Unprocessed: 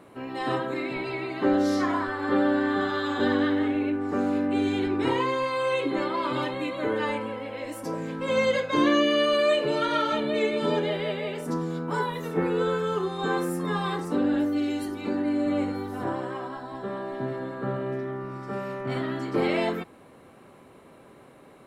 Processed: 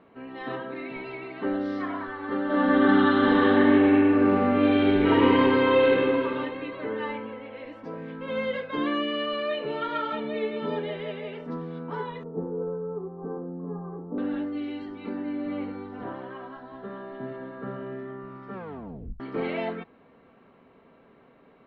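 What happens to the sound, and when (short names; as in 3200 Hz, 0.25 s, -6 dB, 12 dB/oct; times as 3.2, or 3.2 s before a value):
2.45–5.9 reverb throw, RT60 2.7 s, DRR -11 dB
12.23–14.18 Bessel low-pass 630 Hz, order 6
18.54 tape stop 0.66 s
whole clip: LPF 3400 Hz 24 dB/oct; comb 4.4 ms, depth 37%; gain -5.5 dB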